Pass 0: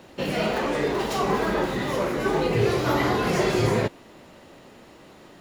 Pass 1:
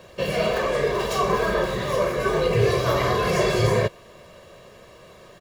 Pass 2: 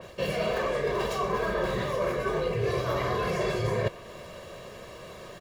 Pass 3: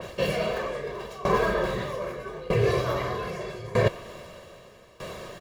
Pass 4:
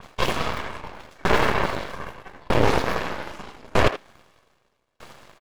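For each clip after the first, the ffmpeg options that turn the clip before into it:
ffmpeg -i in.wav -af "aecho=1:1:1.8:0.78" out.wav
ffmpeg -i in.wav -af "areverse,acompressor=threshold=-29dB:ratio=6,areverse,adynamicequalizer=threshold=0.00316:dfrequency=3300:dqfactor=0.7:tfrequency=3300:tqfactor=0.7:attack=5:release=100:ratio=0.375:range=2:mode=cutabove:tftype=highshelf,volume=3.5dB" out.wav
ffmpeg -i in.wav -af "aeval=exprs='val(0)*pow(10,-19*if(lt(mod(0.8*n/s,1),2*abs(0.8)/1000),1-mod(0.8*n/s,1)/(2*abs(0.8)/1000),(mod(0.8*n/s,1)-2*abs(0.8)/1000)/(1-2*abs(0.8)/1000))/20)':channel_layout=same,volume=7.5dB" out.wav
ffmpeg -i in.wav -filter_complex "[0:a]aeval=exprs='0.355*(cos(1*acos(clip(val(0)/0.355,-1,1)))-cos(1*PI/2))+0.00224*(cos(5*acos(clip(val(0)/0.355,-1,1)))-cos(5*PI/2))+0.141*(cos(6*acos(clip(val(0)/0.355,-1,1)))-cos(6*PI/2))+0.0501*(cos(7*acos(clip(val(0)/0.355,-1,1)))-cos(7*PI/2))':channel_layout=same,asplit=2[link_01][link_02];[link_02]adelay=80,highpass=300,lowpass=3400,asoftclip=type=hard:threshold=-14.5dB,volume=-9dB[link_03];[link_01][link_03]amix=inputs=2:normalize=0" out.wav

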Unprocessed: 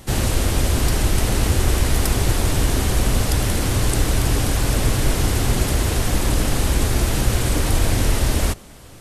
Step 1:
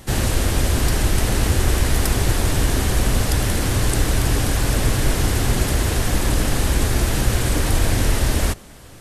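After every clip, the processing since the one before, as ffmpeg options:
ffmpeg -i in.wav -af "equalizer=frequency=1700:width=4.4:gain=3" out.wav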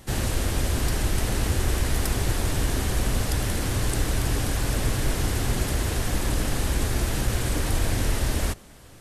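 ffmpeg -i in.wav -af "asoftclip=type=hard:threshold=-7dB,volume=-6dB" out.wav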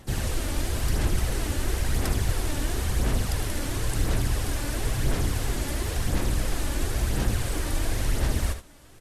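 ffmpeg -i in.wav -filter_complex "[0:a]aphaser=in_gain=1:out_gain=1:delay=3.5:decay=0.42:speed=0.97:type=sinusoidal,asplit=2[link_01][link_02];[link_02]aecho=0:1:62|76:0.188|0.282[link_03];[link_01][link_03]amix=inputs=2:normalize=0,volume=-4.5dB" out.wav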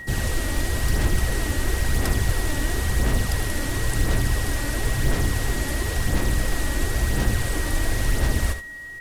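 ffmpeg -i in.wav -filter_complex "[0:a]aeval=exprs='val(0)+0.0126*sin(2*PI*1900*n/s)':channel_layout=same,asplit=2[link_01][link_02];[link_02]acrusher=bits=4:mode=log:mix=0:aa=0.000001,volume=-7dB[link_03];[link_01][link_03]amix=inputs=2:normalize=0" out.wav

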